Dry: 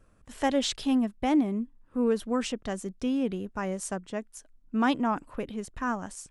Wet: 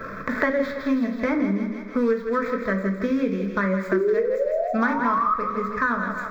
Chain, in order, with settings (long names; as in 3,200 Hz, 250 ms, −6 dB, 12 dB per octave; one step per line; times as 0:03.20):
running median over 15 samples
flat-topped bell 1,200 Hz +13 dB 3 octaves
sound drawn into the spectrogram rise, 0:03.92–0:05.34, 360–1,300 Hz −15 dBFS
phaser with its sweep stopped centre 2,900 Hz, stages 6
on a send: feedback echo with a high-pass in the loop 161 ms, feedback 49%, high-pass 420 Hz, level −9 dB
on the sum: rectangular room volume 380 cubic metres, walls furnished, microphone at 1.5 metres
multiband upward and downward compressor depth 100%
level −3 dB